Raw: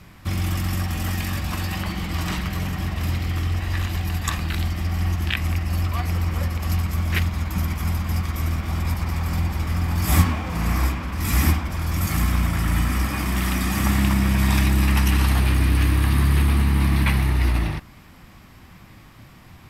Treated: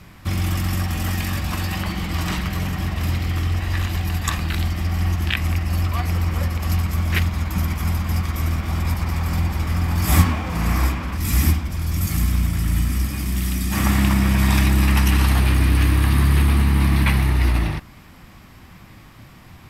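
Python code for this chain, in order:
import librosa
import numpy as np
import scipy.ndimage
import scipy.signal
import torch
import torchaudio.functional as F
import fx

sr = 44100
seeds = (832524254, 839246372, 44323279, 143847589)

y = fx.peak_eq(x, sr, hz=990.0, db=fx.line((11.16, -6.0), (13.71, -14.0)), octaves=2.9, at=(11.16, 13.71), fade=0.02)
y = F.gain(torch.from_numpy(y), 2.0).numpy()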